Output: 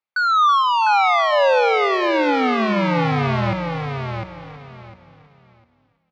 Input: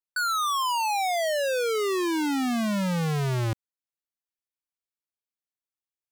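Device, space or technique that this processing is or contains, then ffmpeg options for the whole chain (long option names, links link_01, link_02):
frequency-shifting delay pedal into a guitar cabinet: -filter_complex "[0:a]asplit=6[link_01][link_02][link_03][link_04][link_05][link_06];[link_02]adelay=328,afreqshift=-74,volume=-12.5dB[link_07];[link_03]adelay=656,afreqshift=-148,volume=-19.1dB[link_08];[link_04]adelay=984,afreqshift=-222,volume=-25.6dB[link_09];[link_05]adelay=1312,afreqshift=-296,volume=-32.2dB[link_10];[link_06]adelay=1640,afreqshift=-370,volume=-38.7dB[link_11];[link_01][link_07][link_08][link_09][link_10][link_11]amix=inputs=6:normalize=0,highpass=92,equalizer=frequency=350:width_type=q:width=4:gain=-3,equalizer=frequency=540:width_type=q:width=4:gain=6,equalizer=frequency=820:width_type=q:width=4:gain=7,equalizer=frequency=1200:width_type=q:width=4:gain=7,equalizer=frequency=2200:width_type=q:width=4:gain=8,lowpass=frequency=4400:width=0.5412,lowpass=frequency=4400:width=1.3066,asplit=3[link_12][link_13][link_14];[link_12]afade=type=out:start_time=0.62:duration=0.02[link_15];[link_13]highpass=750,afade=type=in:start_time=0.62:duration=0.02,afade=type=out:start_time=1.31:duration=0.02[link_16];[link_14]afade=type=in:start_time=1.31:duration=0.02[link_17];[link_15][link_16][link_17]amix=inputs=3:normalize=0,aecho=1:1:703|1406|2109:0.531|0.111|0.0234,volume=4.5dB"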